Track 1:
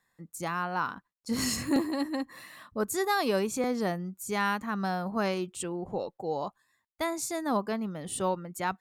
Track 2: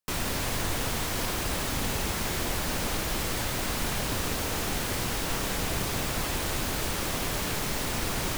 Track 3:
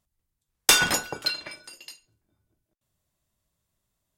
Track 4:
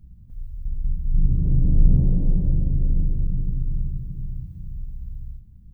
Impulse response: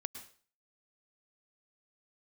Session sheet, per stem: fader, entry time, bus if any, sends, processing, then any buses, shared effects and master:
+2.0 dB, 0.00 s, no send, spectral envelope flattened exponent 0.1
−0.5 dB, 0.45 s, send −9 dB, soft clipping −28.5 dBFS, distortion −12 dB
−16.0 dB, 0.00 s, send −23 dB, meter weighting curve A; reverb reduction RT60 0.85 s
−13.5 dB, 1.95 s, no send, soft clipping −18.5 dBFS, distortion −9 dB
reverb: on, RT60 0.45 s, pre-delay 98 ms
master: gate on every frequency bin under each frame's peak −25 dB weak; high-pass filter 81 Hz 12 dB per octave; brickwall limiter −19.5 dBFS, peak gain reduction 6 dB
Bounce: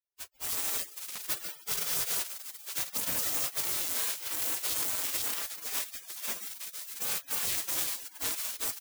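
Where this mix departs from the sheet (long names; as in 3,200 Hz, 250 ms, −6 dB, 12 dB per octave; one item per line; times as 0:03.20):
stem 1 +2.0 dB → +13.5 dB
stem 3: missing reverb reduction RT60 0.85 s
master: missing high-pass filter 81 Hz 12 dB per octave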